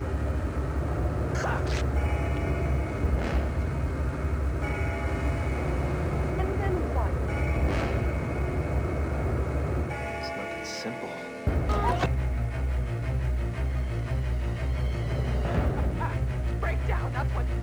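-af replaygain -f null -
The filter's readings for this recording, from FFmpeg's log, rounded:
track_gain = +14.5 dB
track_peak = 0.178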